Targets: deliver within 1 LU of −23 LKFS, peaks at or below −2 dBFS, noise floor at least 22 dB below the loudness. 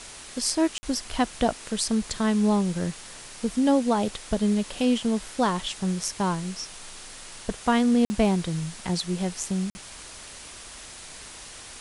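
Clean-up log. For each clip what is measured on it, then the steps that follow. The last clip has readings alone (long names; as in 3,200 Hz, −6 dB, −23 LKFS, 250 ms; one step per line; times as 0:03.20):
number of dropouts 3; longest dropout 50 ms; background noise floor −43 dBFS; target noise floor −48 dBFS; integrated loudness −26.0 LKFS; sample peak −7.5 dBFS; target loudness −23.0 LKFS
→ repair the gap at 0:00.78/0:08.05/0:09.70, 50 ms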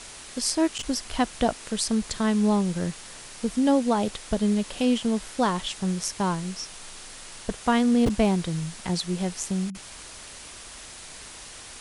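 number of dropouts 0; background noise floor −43 dBFS; target noise floor −48 dBFS
→ broadband denoise 6 dB, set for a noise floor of −43 dBFS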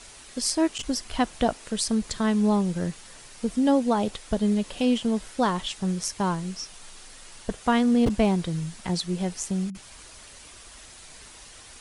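background noise floor −47 dBFS; target noise floor −48 dBFS
→ broadband denoise 6 dB, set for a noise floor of −47 dBFS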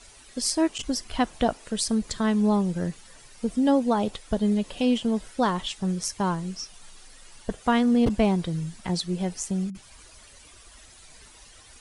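background noise floor −51 dBFS; integrated loudness −26.0 LKFS; sample peak −8.0 dBFS; target loudness −23.0 LKFS
→ level +3 dB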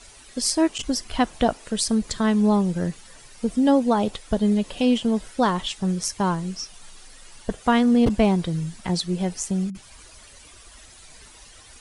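integrated loudness −23.0 LKFS; sample peak −5.0 dBFS; background noise floor −48 dBFS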